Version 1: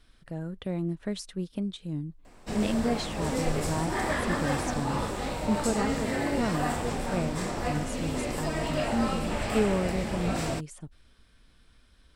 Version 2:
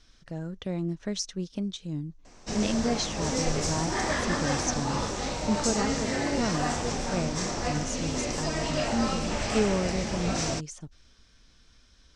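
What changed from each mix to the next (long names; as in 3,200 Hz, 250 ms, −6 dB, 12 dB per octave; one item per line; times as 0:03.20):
master: add low-pass with resonance 6,100 Hz, resonance Q 4.9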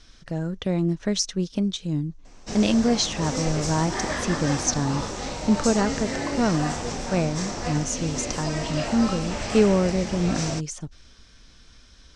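speech +7.5 dB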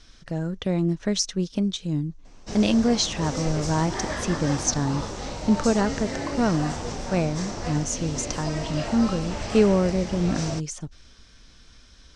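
reverb: off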